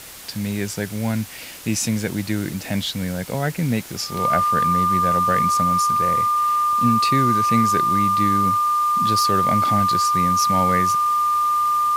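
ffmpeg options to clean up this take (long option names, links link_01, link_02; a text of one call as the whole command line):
ffmpeg -i in.wav -af "bandreject=frequency=1200:width=30,afwtdn=0.013" out.wav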